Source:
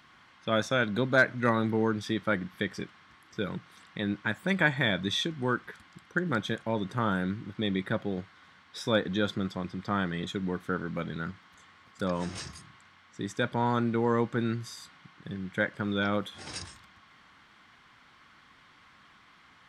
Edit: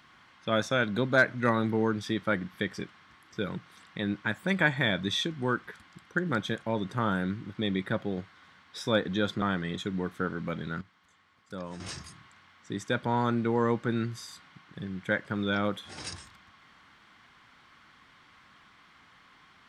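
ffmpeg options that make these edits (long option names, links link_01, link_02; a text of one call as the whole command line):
ffmpeg -i in.wav -filter_complex "[0:a]asplit=4[link_01][link_02][link_03][link_04];[link_01]atrim=end=9.422[link_05];[link_02]atrim=start=9.908:end=11.302[link_06];[link_03]atrim=start=11.298:end=12.292,asetpts=PTS-STARTPTS,volume=-8.5dB[link_07];[link_04]atrim=start=12.288[link_08];[link_05][link_06]acrossfade=duration=0.004:curve1=hsin:curve2=hsin[link_09];[link_09][link_07]acrossfade=duration=0.004:curve1=hsin:curve2=hsin[link_10];[link_10][link_08]acrossfade=duration=0.004:curve1=hsin:curve2=hsin" out.wav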